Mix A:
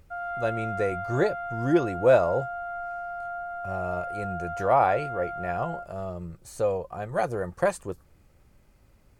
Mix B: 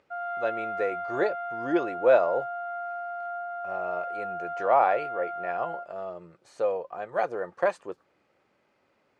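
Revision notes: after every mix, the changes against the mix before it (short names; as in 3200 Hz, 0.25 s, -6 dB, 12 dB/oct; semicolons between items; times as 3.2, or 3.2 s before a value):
speech: add BPF 370–3600 Hz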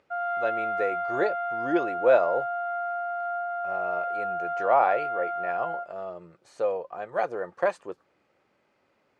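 background +4.0 dB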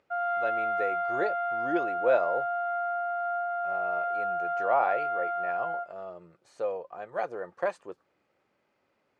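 speech -4.5 dB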